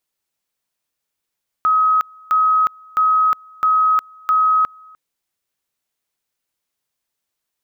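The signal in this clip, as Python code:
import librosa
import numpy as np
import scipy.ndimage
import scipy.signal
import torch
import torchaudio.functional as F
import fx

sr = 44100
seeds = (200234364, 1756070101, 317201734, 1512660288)

y = fx.two_level_tone(sr, hz=1270.0, level_db=-11.5, drop_db=28.5, high_s=0.36, low_s=0.3, rounds=5)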